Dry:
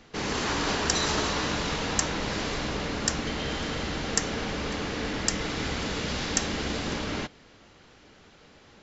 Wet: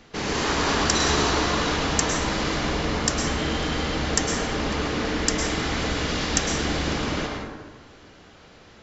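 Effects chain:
dense smooth reverb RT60 1.4 s, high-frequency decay 0.45×, pre-delay 95 ms, DRR 1 dB
level +2.5 dB

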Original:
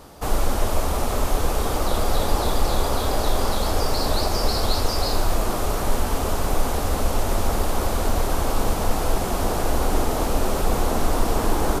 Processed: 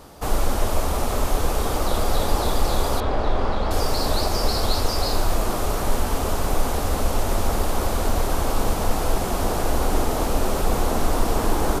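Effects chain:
0:03.00–0:03.71: low-pass filter 2,600 Hz 12 dB per octave

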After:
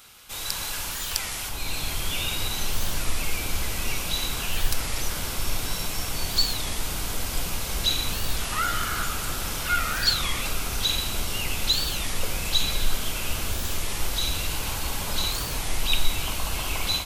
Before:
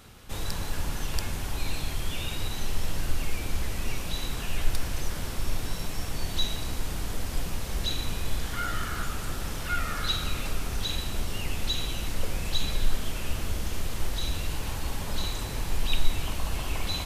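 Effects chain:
tilt shelving filter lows −9 dB, about 690 Hz, from 0:01.48 lows −4 dB
automatic gain control gain up to 7.5 dB
high-shelf EQ 12,000 Hz +5 dB
notch filter 1,800 Hz, Q 11
wow of a warped record 33 1/3 rpm, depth 250 cents
level −3.5 dB

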